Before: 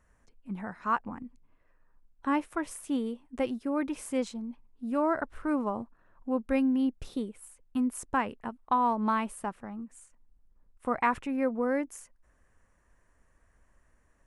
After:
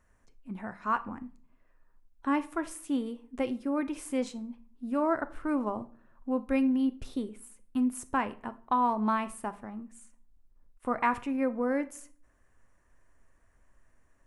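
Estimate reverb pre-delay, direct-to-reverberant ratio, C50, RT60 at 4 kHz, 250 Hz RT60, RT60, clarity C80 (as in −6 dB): 3 ms, 11.0 dB, 17.5 dB, 0.35 s, 0.75 s, 0.45 s, 22.0 dB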